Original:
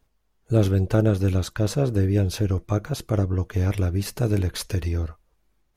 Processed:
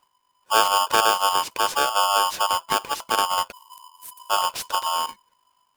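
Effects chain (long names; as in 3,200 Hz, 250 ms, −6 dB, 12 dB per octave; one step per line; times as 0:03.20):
0:03.52–0:04.30: inverse Chebyshev band-stop filter 110–4,300 Hz, stop band 50 dB
ring modulator with a square carrier 1,000 Hz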